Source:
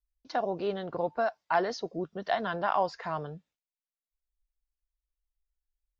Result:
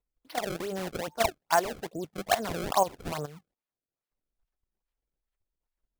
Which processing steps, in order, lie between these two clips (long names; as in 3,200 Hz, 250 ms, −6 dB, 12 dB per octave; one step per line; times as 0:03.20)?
output level in coarse steps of 13 dB
sample-and-hold swept by an LFO 27×, swing 160% 2.4 Hz
level +5.5 dB